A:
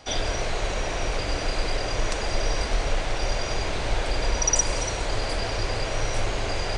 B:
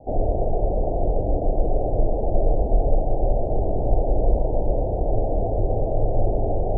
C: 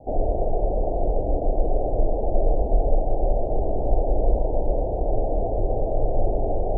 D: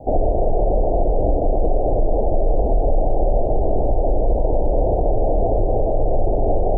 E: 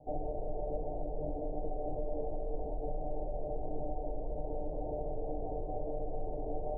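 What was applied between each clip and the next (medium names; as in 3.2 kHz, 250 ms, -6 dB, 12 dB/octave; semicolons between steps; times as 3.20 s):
steep low-pass 780 Hz 72 dB/octave; trim +6.5 dB
dynamic bell 120 Hz, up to -6 dB, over -37 dBFS, Q 0.83
peak limiter -17.5 dBFS, peak gain reduction 10 dB; trim +8.5 dB
feedback comb 150 Hz, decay 0.23 s, harmonics all, mix 90%; trim -9 dB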